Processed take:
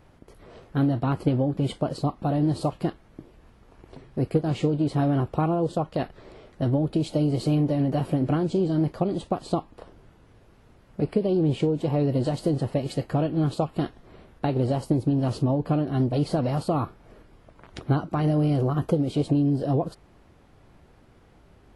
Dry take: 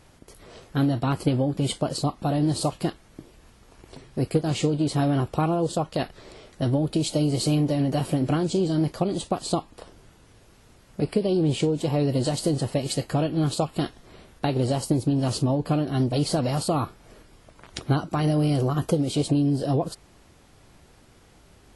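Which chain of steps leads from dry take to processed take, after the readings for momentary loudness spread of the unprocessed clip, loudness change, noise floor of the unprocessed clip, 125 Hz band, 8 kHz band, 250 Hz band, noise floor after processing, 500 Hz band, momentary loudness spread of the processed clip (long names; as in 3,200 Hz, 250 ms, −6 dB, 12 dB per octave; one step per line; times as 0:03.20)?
7 LU, −0.5 dB, −55 dBFS, 0.0 dB, −13.5 dB, 0.0 dB, −56 dBFS, −0.5 dB, 7 LU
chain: parametric band 8,300 Hz −14 dB 2.4 octaves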